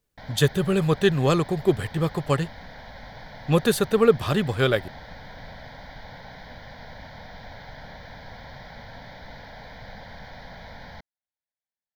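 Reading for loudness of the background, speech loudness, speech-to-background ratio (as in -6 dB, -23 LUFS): -42.5 LUFS, -23.0 LUFS, 19.5 dB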